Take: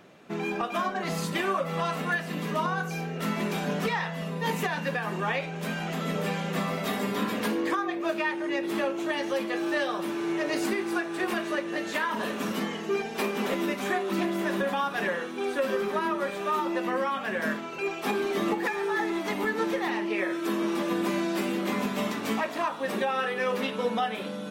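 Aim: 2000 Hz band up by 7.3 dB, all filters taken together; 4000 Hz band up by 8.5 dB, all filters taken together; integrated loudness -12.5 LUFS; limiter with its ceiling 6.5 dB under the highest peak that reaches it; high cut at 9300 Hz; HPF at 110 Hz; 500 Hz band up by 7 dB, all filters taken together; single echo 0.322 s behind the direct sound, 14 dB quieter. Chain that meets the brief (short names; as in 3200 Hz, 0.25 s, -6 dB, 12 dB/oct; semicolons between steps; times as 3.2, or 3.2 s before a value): HPF 110 Hz; LPF 9300 Hz; bell 500 Hz +8.5 dB; bell 2000 Hz +6.5 dB; bell 4000 Hz +8.5 dB; limiter -15.5 dBFS; echo 0.322 s -14 dB; gain +12.5 dB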